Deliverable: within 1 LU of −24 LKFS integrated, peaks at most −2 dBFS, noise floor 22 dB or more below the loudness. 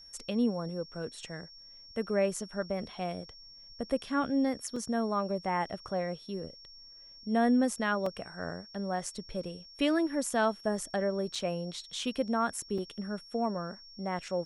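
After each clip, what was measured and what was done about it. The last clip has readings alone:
number of dropouts 4; longest dropout 3.7 ms; interfering tone 5,500 Hz; level of the tone −50 dBFS; integrated loudness −33.0 LKFS; sample peak −16.0 dBFS; target loudness −24.0 LKFS
→ repair the gap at 0:04.76/0:08.06/0:11.35/0:12.78, 3.7 ms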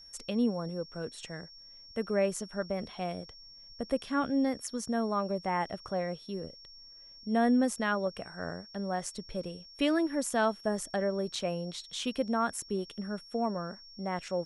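number of dropouts 0; interfering tone 5,500 Hz; level of the tone −50 dBFS
→ notch filter 5,500 Hz, Q 30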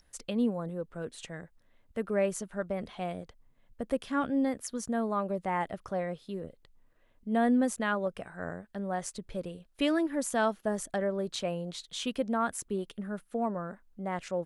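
interfering tone none found; integrated loudness −33.0 LKFS; sample peak −16.5 dBFS; target loudness −24.0 LKFS
→ level +9 dB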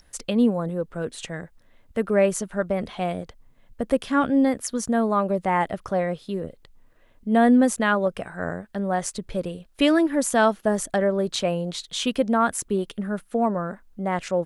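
integrated loudness −24.0 LKFS; sample peak −7.5 dBFS; background noise floor −57 dBFS

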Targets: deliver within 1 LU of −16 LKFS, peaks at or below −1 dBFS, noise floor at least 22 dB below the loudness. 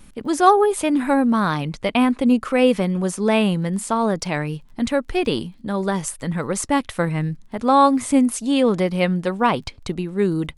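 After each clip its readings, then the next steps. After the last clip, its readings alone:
crackle rate 23 per second; integrated loudness −20.0 LKFS; sample peak −2.0 dBFS; target loudness −16.0 LKFS
→ click removal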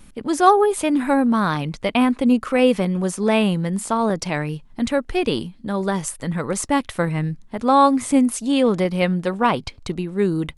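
crackle rate 0 per second; integrated loudness −20.0 LKFS; sample peak −2.0 dBFS; target loudness −16.0 LKFS
→ level +4 dB
brickwall limiter −1 dBFS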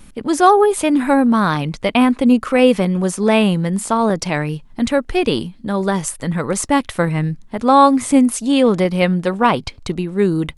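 integrated loudness −16.5 LKFS; sample peak −1.0 dBFS; background noise floor −43 dBFS

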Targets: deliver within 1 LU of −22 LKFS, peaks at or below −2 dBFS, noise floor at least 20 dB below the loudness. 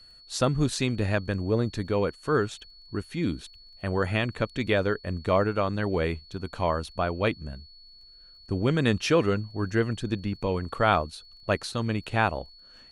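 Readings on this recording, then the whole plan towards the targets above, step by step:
crackle rate 19 per second; interfering tone 4,400 Hz; level of the tone −50 dBFS; integrated loudness −27.5 LKFS; sample peak −8.0 dBFS; target loudness −22.0 LKFS
→ click removal
notch filter 4,400 Hz, Q 30
level +5.5 dB

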